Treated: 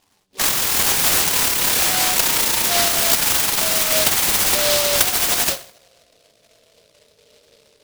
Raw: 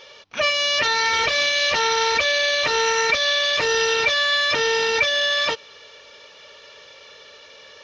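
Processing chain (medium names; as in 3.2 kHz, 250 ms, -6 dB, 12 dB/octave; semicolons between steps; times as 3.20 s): pitch bend over the whole clip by +11.5 st ending unshifted; dynamic bell 2.9 kHz, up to +4 dB, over -30 dBFS, Q 0.75; level-controlled noise filter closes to 410 Hz, open at -17 dBFS; reverberation RT60 0.55 s, pre-delay 4 ms, DRR 8 dB; delay time shaken by noise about 3.7 kHz, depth 0.24 ms; trim +1 dB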